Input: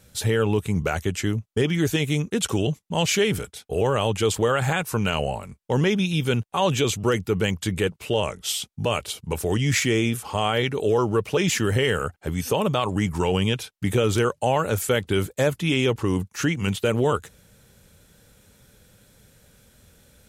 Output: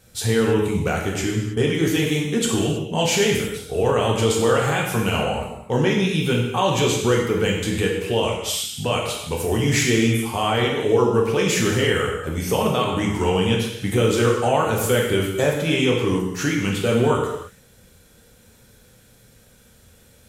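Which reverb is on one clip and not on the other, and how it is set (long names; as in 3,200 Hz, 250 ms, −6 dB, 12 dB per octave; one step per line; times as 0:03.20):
reverb whose tail is shaped and stops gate 350 ms falling, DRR −2 dB
level −1 dB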